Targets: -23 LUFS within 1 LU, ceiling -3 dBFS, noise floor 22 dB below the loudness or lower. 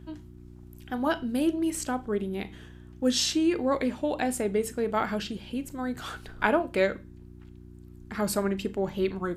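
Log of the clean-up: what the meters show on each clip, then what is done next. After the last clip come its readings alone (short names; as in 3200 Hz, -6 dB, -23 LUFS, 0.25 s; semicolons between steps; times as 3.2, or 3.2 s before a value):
hum 60 Hz; harmonics up to 360 Hz; hum level -46 dBFS; loudness -28.5 LUFS; peak -9.0 dBFS; loudness target -23.0 LUFS
-> de-hum 60 Hz, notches 6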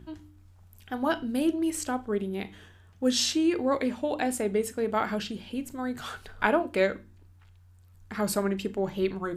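hum none; loudness -28.5 LUFS; peak -9.0 dBFS; loudness target -23.0 LUFS
-> gain +5.5 dB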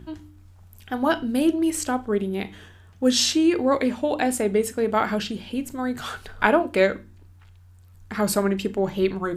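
loudness -23.0 LUFS; peak -3.5 dBFS; noise floor -50 dBFS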